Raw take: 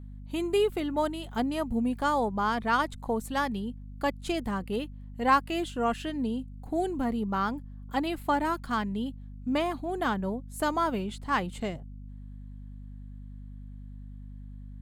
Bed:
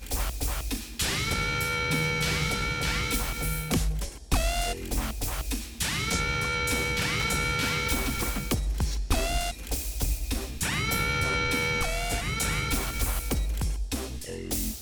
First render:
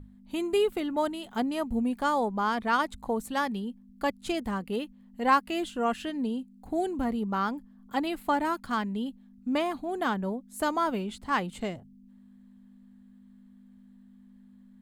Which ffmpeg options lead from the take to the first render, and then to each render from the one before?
-af "bandreject=f=50:t=h:w=6,bandreject=f=100:t=h:w=6,bandreject=f=150:t=h:w=6"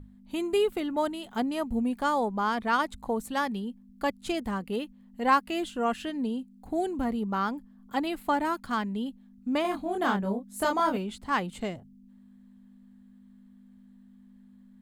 -filter_complex "[0:a]asettb=1/sr,asplit=3[s0][s1][s2];[s0]atrim=end=9.624[s3];[s1]atrim=start=9.62:end=10.97,asetpts=PTS-STARTPTS,afade=t=in:d=0.004:c=qsin,afade=t=out:st=1.346:d=0.004:c=qsin,asplit=2[s4][s5];[s5]adelay=25,volume=0.75[s6];[s4][s6]amix=inputs=2:normalize=0,atrim=end_sample=59535[s7];[s2]atrim=start=10.966[s8];[s3][s7]acrossfade=d=0.004:c1=hsin:c2=qsin[s9];[s9][s8]acrossfade=d=0.004:c1=qsin:c2=hsin"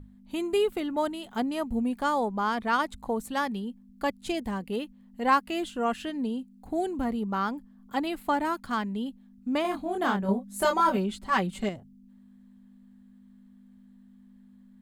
-filter_complex "[0:a]asettb=1/sr,asplit=3[s0][s1][s2];[s0]atrim=end=4.244[s3];[s1]atrim=start=4.24:end=4.72,asetpts=PTS-STARTPTS,afade=t=in:d=0.004:c=qsin,afade=t=out:st=0.476:d=0.004:c=qsin,equalizer=f=1300:t=o:w=0.27:g=-9.5[s4];[s2]atrim=start=4.716[s5];[s3][s4]acrossfade=d=0.004:c1=hsin:c2=qsin[s6];[s6][s5]acrossfade=d=0.004:c1=qsin:c2=hsin,asettb=1/sr,asplit=3[s7][s8][s9];[s7]atrim=end=10.284[s10];[s8]atrim=start=10.28:end=11.69,asetpts=PTS-STARTPTS,afade=t=in:d=0.004:c=qsin,afade=t=out:st=1.406:d=0.004:c=qsin,aecho=1:1:5.2:0.83,atrim=end_sample=62181[s11];[s9]atrim=start=11.686[s12];[s10][s11]acrossfade=d=0.004:c1=hsin:c2=qsin[s13];[s13][s12]acrossfade=d=0.004:c1=qsin:c2=hsin"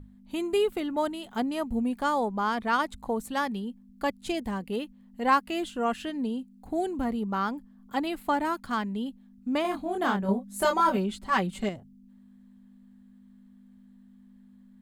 -af anull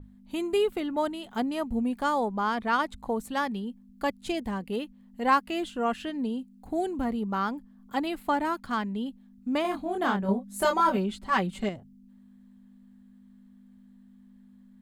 -af "adynamicequalizer=threshold=0.00316:dfrequency=5400:dqfactor=0.7:tfrequency=5400:tqfactor=0.7:attack=5:release=100:ratio=0.375:range=2.5:mode=cutabove:tftype=highshelf"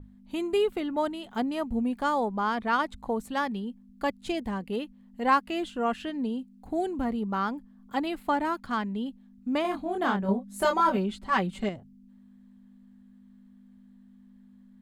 -af "highshelf=f=7500:g=-5.5"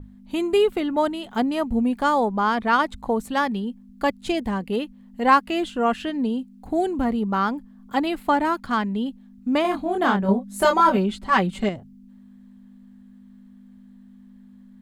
-af "volume=2.11"

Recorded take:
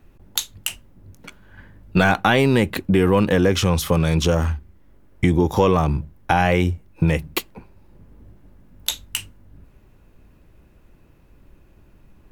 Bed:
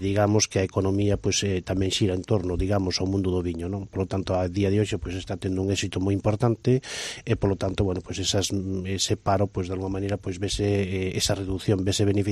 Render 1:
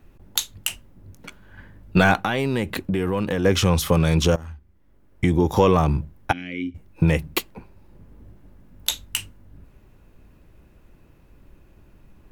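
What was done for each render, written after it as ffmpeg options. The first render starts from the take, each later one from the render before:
-filter_complex "[0:a]asplit=3[s0][s1][s2];[s0]afade=t=out:st=2.21:d=0.02[s3];[s1]acompressor=threshold=0.0794:ratio=2.5:attack=3.2:release=140:knee=1:detection=peak,afade=t=in:st=2.21:d=0.02,afade=t=out:st=3.44:d=0.02[s4];[s2]afade=t=in:st=3.44:d=0.02[s5];[s3][s4][s5]amix=inputs=3:normalize=0,asplit=3[s6][s7][s8];[s6]afade=t=out:st=6.31:d=0.02[s9];[s7]asplit=3[s10][s11][s12];[s10]bandpass=f=270:t=q:w=8,volume=1[s13];[s11]bandpass=f=2290:t=q:w=8,volume=0.501[s14];[s12]bandpass=f=3010:t=q:w=8,volume=0.355[s15];[s13][s14][s15]amix=inputs=3:normalize=0,afade=t=in:st=6.31:d=0.02,afade=t=out:st=6.74:d=0.02[s16];[s8]afade=t=in:st=6.74:d=0.02[s17];[s9][s16][s17]amix=inputs=3:normalize=0,asplit=2[s18][s19];[s18]atrim=end=4.36,asetpts=PTS-STARTPTS,afade=t=out:st=4.356:d=0.004:c=hsin:silence=0.0944061[s20];[s19]atrim=start=4.36,asetpts=PTS-STARTPTS,afade=t=in:d=1.24:silence=0.0944061[s21];[s20][s21]concat=n=2:v=0:a=1"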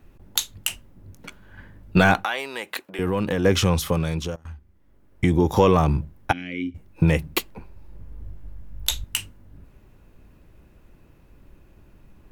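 -filter_complex "[0:a]asettb=1/sr,asplit=3[s0][s1][s2];[s0]atrim=end=2.244[s3];[s1]atrim=start=2.24:end=2.99,asetpts=PTS-STARTPTS,afade=t=in:d=0.004:c=qsin,afade=t=out:st=0.746:d=0.004:c=qsin,highpass=700[s4];[s2]atrim=start=2.986[s5];[s3][s4]acrossfade=d=0.004:c1=hsin:c2=qsin[s6];[s6][s5]acrossfade=d=0.004:c1=qsin:c2=hsin,asettb=1/sr,asplit=3[s7][s8][s9];[s7]atrim=end=7.294[s10];[s8]atrim=start=7.29:end=9.04,asetpts=PTS-STARTPTS,afade=t=in:d=0.004:c=qsin,afade=t=out:st=1.746:d=0.004:c=qsin,asubboost=boost=10.5:cutoff=98[s11];[s9]atrim=start=9.036[s12];[s10][s11]acrossfade=d=0.004:c1=hsin:c2=qsin[s13];[s13][s12]acrossfade=d=0.004:c1=qsin:c2=hsin,asplit=2[s14][s15];[s14]atrim=end=4.45,asetpts=PTS-STARTPTS,afade=t=out:st=3.55:d=0.9:silence=0.11885[s16];[s15]atrim=start=4.45,asetpts=PTS-STARTPTS,afade=t=in:d=0.004:c=hsin:silence=0.11885[s17];[s16][s17]concat=n=2:v=0:a=1"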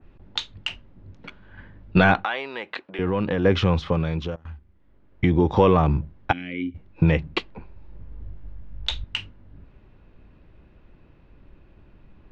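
-af "lowpass=f=4100:w=0.5412,lowpass=f=4100:w=1.3066,adynamicequalizer=threshold=0.0112:dfrequency=2200:dqfactor=0.7:tfrequency=2200:tqfactor=0.7:attack=5:release=100:ratio=0.375:range=2:mode=cutabove:tftype=highshelf"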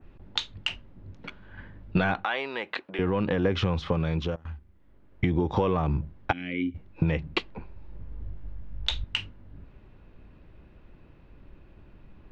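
-af "acompressor=threshold=0.0891:ratio=6"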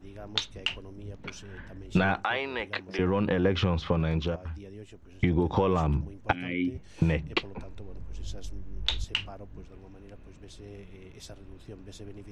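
-filter_complex "[1:a]volume=0.075[s0];[0:a][s0]amix=inputs=2:normalize=0"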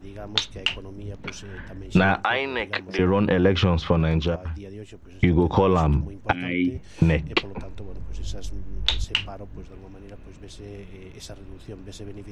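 -af "volume=2,alimiter=limit=0.794:level=0:latency=1"

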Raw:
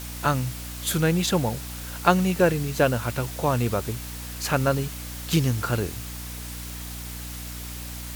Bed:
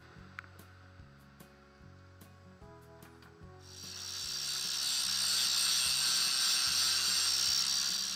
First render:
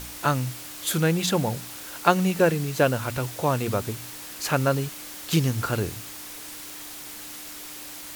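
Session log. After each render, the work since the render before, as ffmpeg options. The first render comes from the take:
-af "bandreject=f=60:t=h:w=4,bandreject=f=120:t=h:w=4,bandreject=f=180:t=h:w=4,bandreject=f=240:t=h:w=4"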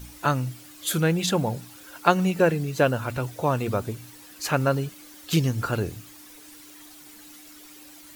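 -af "afftdn=nr=11:nf=-40"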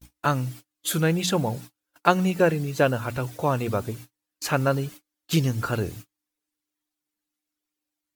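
-af "agate=range=0.0112:threshold=0.0112:ratio=16:detection=peak"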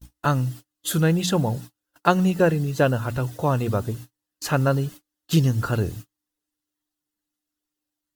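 -af "lowshelf=f=180:g=7,bandreject=f=2300:w=6.2"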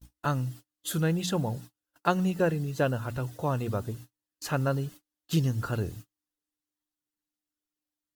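-af "volume=0.447"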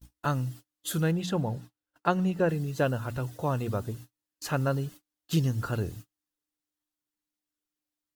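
-filter_complex "[0:a]asettb=1/sr,asplit=3[s0][s1][s2];[s0]atrim=end=1.114[s3];[s1]atrim=start=1.11:end=2.49,asetpts=PTS-STARTPTS,afade=t=in:d=0.004:c=qsin,afade=t=out:st=1.376:d=0.004:c=qsin,highshelf=f=4800:g=-10[s4];[s2]atrim=start=2.486[s5];[s3][s4]acrossfade=d=0.004:c1=hsin:c2=qsin[s6];[s6][s5]acrossfade=d=0.004:c1=qsin:c2=hsin"

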